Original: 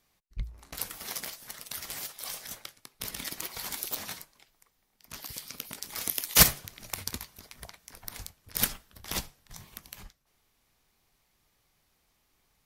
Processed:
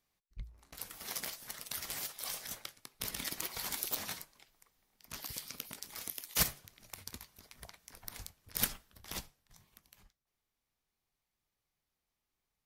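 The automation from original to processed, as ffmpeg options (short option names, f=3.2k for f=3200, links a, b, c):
-af "volume=5dB,afade=t=in:st=0.8:d=0.46:silence=0.398107,afade=t=out:st=5.35:d=0.81:silence=0.316228,afade=t=in:st=7.02:d=0.74:silence=0.446684,afade=t=out:st=8.73:d=0.87:silence=0.281838"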